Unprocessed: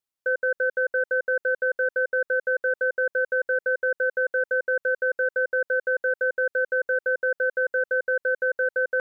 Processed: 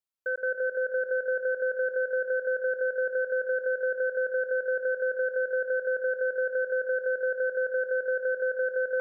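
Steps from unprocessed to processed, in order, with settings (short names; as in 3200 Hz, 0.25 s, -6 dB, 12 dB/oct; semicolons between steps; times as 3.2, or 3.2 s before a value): thinning echo 0.316 s, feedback 65%, high-pass 680 Hz, level -6 dB; on a send at -9 dB: reverb RT60 0.75 s, pre-delay 0.115 s; on the sum: gain -6 dB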